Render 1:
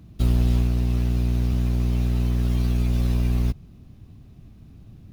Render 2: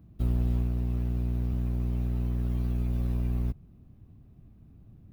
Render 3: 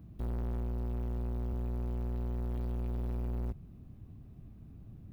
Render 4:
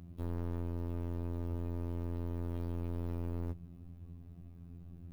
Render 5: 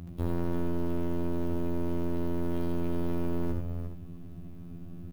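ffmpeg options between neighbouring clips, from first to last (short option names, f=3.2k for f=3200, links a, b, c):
-af "equalizer=f=5.3k:w=0.47:g=-12.5,volume=-7dB"
-af "asoftclip=type=tanh:threshold=-35.5dB,volume=2.5dB"
-af "afftfilt=real='hypot(re,im)*cos(PI*b)':imag='0':win_size=2048:overlap=0.75,volume=3.5dB"
-af "aecho=1:1:75|90|282|353|421:0.501|0.282|0.126|0.355|0.188,volume=8.5dB"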